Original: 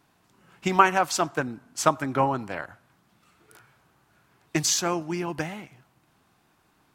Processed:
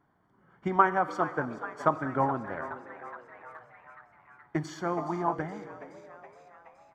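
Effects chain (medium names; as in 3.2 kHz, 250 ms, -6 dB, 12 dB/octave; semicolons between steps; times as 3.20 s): Savitzky-Golay filter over 41 samples; frequency-shifting echo 421 ms, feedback 62%, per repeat +120 Hz, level -14 dB; plate-style reverb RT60 2.5 s, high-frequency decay 1×, DRR 13.5 dB; time-frequency box 4.98–5.33 s, 600–1300 Hz +11 dB; trim -4 dB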